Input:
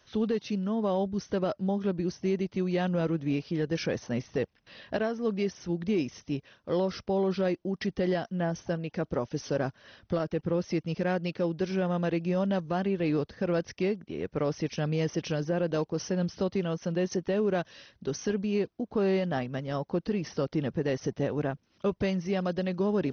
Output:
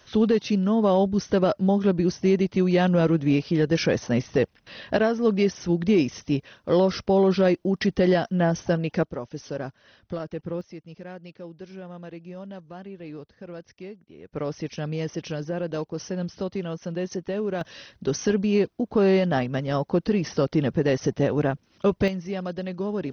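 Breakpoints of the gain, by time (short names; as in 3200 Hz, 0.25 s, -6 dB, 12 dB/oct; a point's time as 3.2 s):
+8 dB
from 9.03 s -2.5 dB
from 10.61 s -11 dB
from 14.33 s -0.5 dB
from 17.61 s +7 dB
from 22.08 s -1 dB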